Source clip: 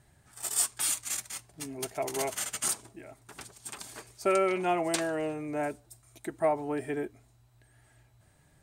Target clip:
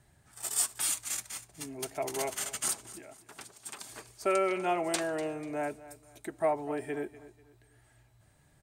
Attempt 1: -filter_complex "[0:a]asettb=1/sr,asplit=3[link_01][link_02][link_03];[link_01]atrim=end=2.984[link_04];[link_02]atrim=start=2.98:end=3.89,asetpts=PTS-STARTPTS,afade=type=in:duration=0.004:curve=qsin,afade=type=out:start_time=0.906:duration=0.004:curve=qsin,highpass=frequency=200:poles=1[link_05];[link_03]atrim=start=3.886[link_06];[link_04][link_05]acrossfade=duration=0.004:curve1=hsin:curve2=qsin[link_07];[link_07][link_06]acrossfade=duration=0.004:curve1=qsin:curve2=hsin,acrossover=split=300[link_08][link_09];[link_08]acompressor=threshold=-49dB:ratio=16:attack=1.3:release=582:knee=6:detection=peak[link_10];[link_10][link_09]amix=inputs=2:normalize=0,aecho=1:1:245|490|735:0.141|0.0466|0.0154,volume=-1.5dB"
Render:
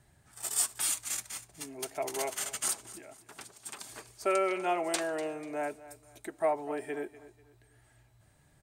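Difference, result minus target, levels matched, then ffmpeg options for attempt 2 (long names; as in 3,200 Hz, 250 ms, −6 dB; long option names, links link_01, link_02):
downward compressor: peak gain reduction +10 dB
-filter_complex "[0:a]asettb=1/sr,asplit=3[link_01][link_02][link_03];[link_01]atrim=end=2.984[link_04];[link_02]atrim=start=2.98:end=3.89,asetpts=PTS-STARTPTS,afade=type=in:duration=0.004:curve=qsin,afade=type=out:start_time=0.906:duration=0.004:curve=qsin,highpass=frequency=200:poles=1[link_05];[link_03]atrim=start=3.886[link_06];[link_04][link_05]acrossfade=duration=0.004:curve1=hsin:curve2=qsin[link_07];[link_07][link_06]acrossfade=duration=0.004:curve1=qsin:curve2=hsin,acrossover=split=300[link_08][link_09];[link_08]acompressor=threshold=-38.5dB:ratio=16:attack=1.3:release=582:knee=6:detection=peak[link_10];[link_10][link_09]amix=inputs=2:normalize=0,aecho=1:1:245|490|735:0.141|0.0466|0.0154,volume=-1.5dB"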